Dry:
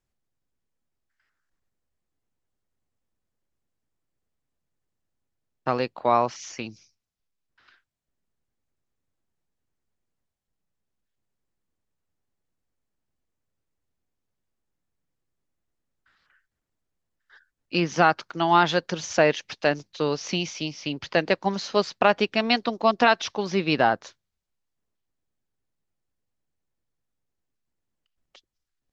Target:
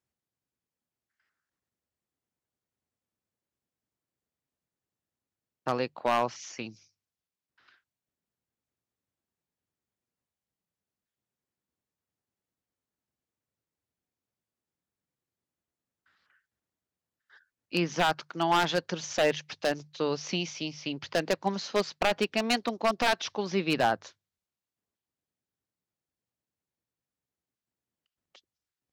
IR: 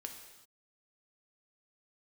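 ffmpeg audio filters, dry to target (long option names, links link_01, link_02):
-af "highpass=80,bandreject=frequency=50:width_type=h:width=6,bandreject=frequency=100:width_type=h:width=6,bandreject=frequency=150:width_type=h:width=6,aeval=exprs='0.251*(abs(mod(val(0)/0.251+3,4)-2)-1)':channel_layout=same,volume=-4dB"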